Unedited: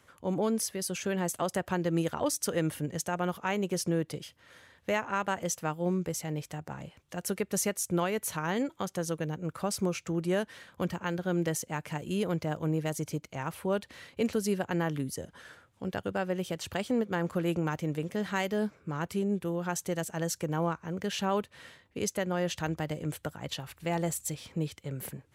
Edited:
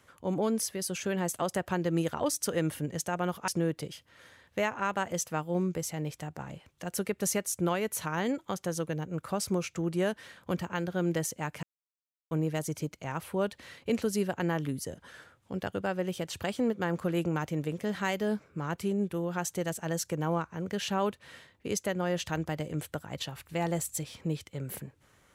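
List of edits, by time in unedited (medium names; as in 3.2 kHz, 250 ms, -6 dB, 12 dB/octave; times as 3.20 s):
3.48–3.79 s: delete
11.94–12.62 s: mute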